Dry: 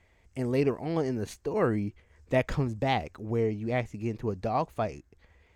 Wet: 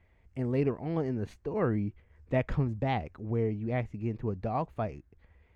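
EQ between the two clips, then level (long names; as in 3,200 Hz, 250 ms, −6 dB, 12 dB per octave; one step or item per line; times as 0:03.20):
bass and treble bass +5 dB, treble −14 dB
−4.0 dB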